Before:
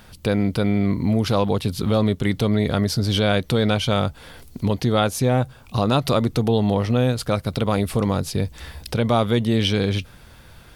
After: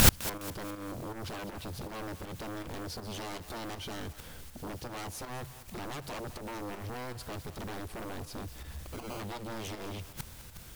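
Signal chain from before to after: low shelf 370 Hz +8 dB; in parallel at -0.5 dB: compressor, threshold -24 dBFS, peak gain reduction 14.5 dB; 8.78–9.2 on the sum: sample-rate reducer 1800 Hz, jitter 0%; added noise white -37 dBFS; sine folder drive 15 dB, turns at -1 dBFS; pump 160 bpm, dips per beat 1, -9 dB, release 0.134 s; flipped gate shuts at -6 dBFS, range -35 dB; on a send: thinning echo 0.206 s, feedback 43%, level -14 dB

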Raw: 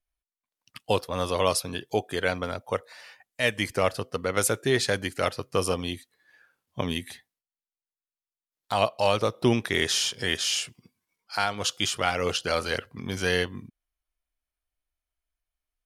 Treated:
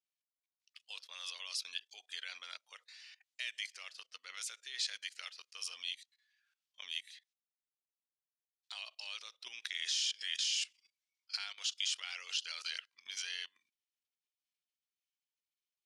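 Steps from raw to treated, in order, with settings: level quantiser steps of 18 dB; Butterworth band-pass 4200 Hz, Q 0.9; gain +2.5 dB

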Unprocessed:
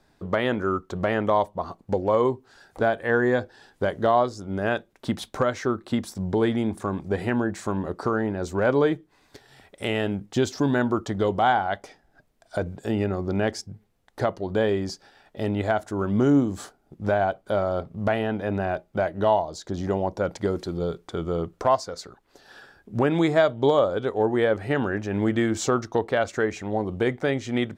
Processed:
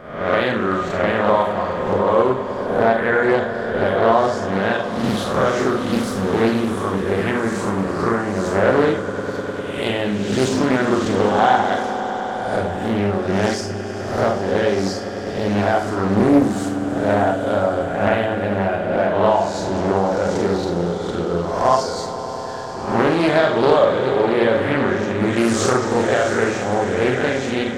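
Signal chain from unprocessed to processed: spectral swells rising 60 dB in 0.79 s; on a send: swelling echo 0.101 s, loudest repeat 5, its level -16 dB; on the sum: Schroeder reverb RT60 0.37 s, combs from 31 ms, DRR 1.5 dB; Doppler distortion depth 0.54 ms; gain +1.5 dB

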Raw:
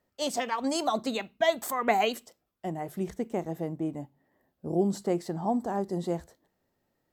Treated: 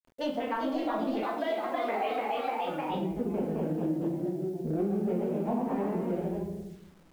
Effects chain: Wiener smoothing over 41 samples; shoebox room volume 140 m³, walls mixed, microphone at 1.6 m; echoes that change speed 0.4 s, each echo +1 st, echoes 3; in parallel at -1.5 dB: limiter -14.5 dBFS, peak gain reduction 9 dB; on the sum: air absorption 290 m; compressor 3:1, threshold -32 dBFS, peak gain reduction 15 dB; bit-crush 10-bit; 1.23–2.9 tone controls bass -11 dB, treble +2 dB

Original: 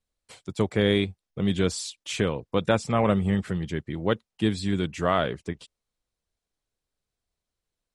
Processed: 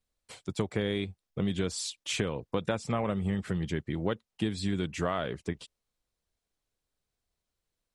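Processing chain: compressor 6:1, threshold -26 dBFS, peak gain reduction 10 dB

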